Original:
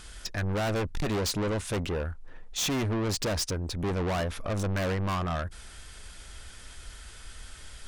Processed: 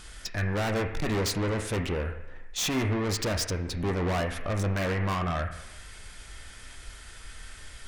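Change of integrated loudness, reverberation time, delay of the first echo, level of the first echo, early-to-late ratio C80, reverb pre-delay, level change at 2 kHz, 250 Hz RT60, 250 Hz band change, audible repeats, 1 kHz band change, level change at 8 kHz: +1.0 dB, 0.85 s, no echo audible, no echo audible, 8.5 dB, 6 ms, +3.0 dB, 0.85 s, +1.0 dB, no echo audible, +1.0 dB, 0.0 dB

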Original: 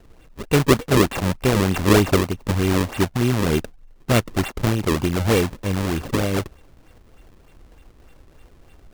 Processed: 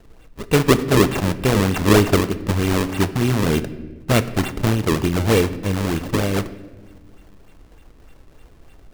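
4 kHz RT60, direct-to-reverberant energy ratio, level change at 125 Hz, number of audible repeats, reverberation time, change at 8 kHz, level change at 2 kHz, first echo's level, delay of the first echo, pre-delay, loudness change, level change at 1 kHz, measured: 0.85 s, 11.5 dB, +1.5 dB, no echo audible, 1.3 s, +1.0 dB, +1.5 dB, no echo audible, no echo audible, 5 ms, +1.5 dB, +1.0 dB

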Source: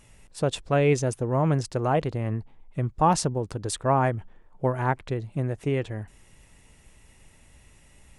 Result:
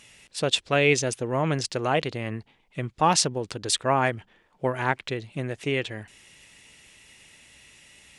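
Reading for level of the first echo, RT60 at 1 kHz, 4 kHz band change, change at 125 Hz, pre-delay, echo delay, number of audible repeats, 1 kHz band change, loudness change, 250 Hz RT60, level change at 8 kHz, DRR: no echo audible, no reverb audible, +10.5 dB, −5.0 dB, no reverb audible, no echo audible, no echo audible, 0.0 dB, +0.5 dB, no reverb audible, +6.5 dB, no reverb audible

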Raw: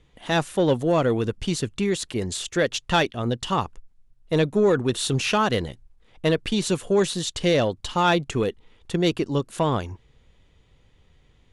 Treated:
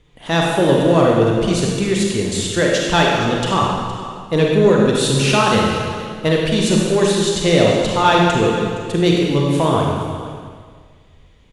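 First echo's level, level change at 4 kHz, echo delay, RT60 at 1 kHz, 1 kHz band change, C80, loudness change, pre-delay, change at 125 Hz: −14.5 dB, +7.5 dB, 466 ms, 1.8 s, +8.5 dB, 1.0 dB, +7.5 dB, 31 ms, +8.5 dB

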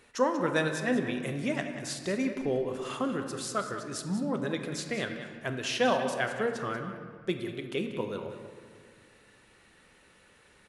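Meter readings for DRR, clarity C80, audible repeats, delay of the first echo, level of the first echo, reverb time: 4.5 dB, 7.0 dB, 1, 187 ms, −11.5 dB, 2.0 s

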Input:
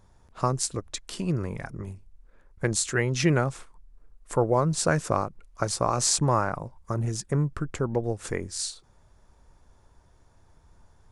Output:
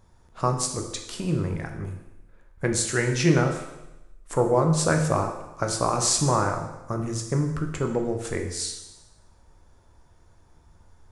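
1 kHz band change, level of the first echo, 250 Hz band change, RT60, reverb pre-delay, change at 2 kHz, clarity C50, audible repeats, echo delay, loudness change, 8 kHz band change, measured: +1.5 dB, no echo audible, +3.0 dB, 0.95 s, 12 ms, +1.5 dB, 6.5 dB, no echo audible, no echo audible, +2.0 dB, +1.5 dB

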